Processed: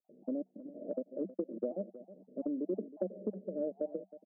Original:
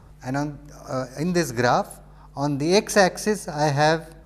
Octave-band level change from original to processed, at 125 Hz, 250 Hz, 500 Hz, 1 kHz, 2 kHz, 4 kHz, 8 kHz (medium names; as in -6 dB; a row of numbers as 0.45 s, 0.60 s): -26.5 dB, -12.5 dB, -14.5 dB, -36.0 dB, under -40 dB, under -40 dB, under -40 dB